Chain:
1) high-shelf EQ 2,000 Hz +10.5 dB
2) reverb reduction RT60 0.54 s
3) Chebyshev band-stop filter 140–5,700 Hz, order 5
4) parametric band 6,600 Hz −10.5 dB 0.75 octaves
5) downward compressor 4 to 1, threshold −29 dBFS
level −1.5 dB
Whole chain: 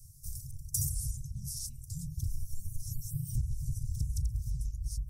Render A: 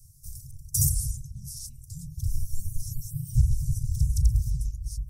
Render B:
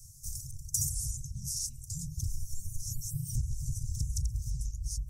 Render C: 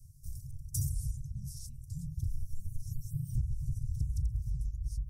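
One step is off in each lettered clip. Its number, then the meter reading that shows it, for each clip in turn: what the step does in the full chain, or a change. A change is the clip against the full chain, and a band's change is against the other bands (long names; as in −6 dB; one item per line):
5, change in momentary loudness spread +7 LU
4, 4 kHz band +5.5 dB
1, 4 kHz band −8.0 dB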